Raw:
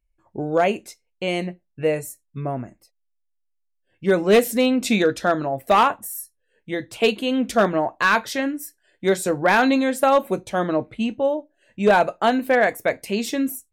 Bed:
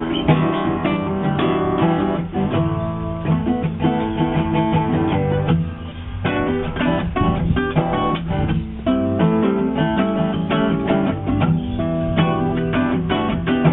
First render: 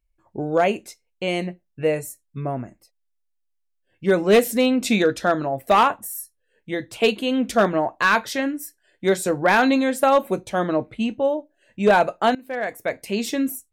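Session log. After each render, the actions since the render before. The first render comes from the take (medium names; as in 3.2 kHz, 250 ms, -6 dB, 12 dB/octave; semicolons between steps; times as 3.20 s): 12.35–13.22 s: fade in, from -21 dB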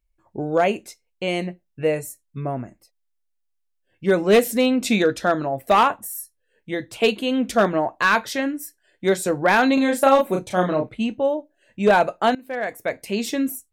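9.74–10.89 s: doubling 33 ms -3.5 dB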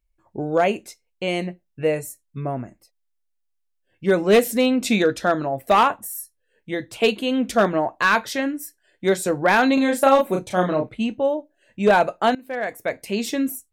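no audible change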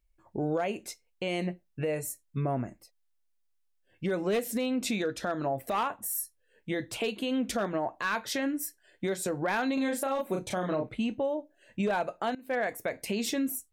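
compression 12:1, threshold -25 dBFS, peak gain reduction 15.5 dB; peak limiter -21.5 dBFS, peak gain reduction 9 dB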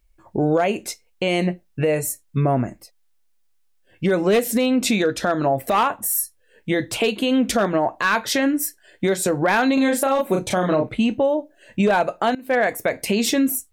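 trim +11 dB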